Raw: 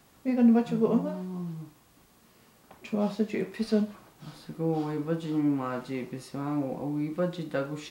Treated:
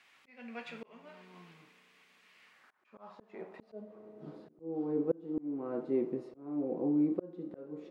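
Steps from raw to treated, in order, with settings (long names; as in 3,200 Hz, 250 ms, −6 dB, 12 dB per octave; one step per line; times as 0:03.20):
band-pass filter sweep 2,300 Hz → 380 Hz, 0:02.41–0:04.12
spring reverb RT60 3.2 s, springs 33 ms, chirp 70 ms, DRR 18 dB
volume swells 548 ms
level +7 dB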